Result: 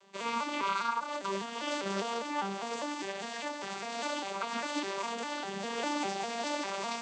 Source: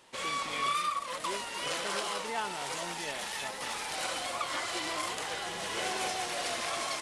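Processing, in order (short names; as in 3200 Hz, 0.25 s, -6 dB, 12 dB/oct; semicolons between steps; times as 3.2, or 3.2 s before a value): arpeggiated vocoder minor triad, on G3, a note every 0.201 s; high shelf 4800 Hz +8 dB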